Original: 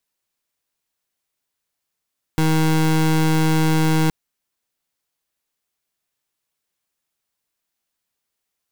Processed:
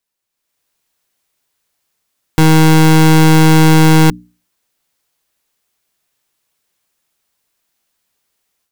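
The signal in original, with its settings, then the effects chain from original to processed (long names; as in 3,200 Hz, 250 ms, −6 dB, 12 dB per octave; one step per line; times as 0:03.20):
pulse wave 158 Hz, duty 26% −16.5 dBFS 1.72 s
mains-hum notches 60/120/180/240/300 Hz
automatic gain control gain up to 10.5 dB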